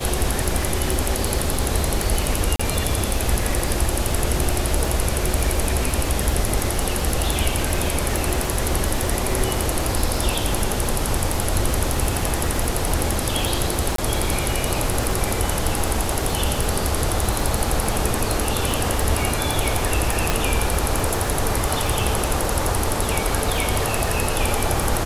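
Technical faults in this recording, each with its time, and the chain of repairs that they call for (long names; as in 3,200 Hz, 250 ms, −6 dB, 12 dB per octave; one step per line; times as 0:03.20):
surface crackle 56 per second −24 dBFS
0:02.56–0:02.60: drop-out 35 ms
0:13.96–0:13.98: drop-out 23 ms
0:20.30: click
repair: click removal
repair the gap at 0:02.56, 35 ms
repair the gap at 0:13.96, 23 ms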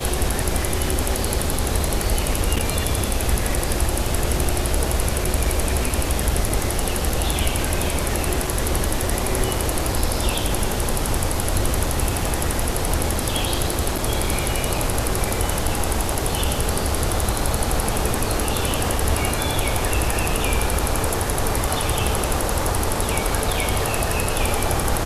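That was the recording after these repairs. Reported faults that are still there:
0:20.30: click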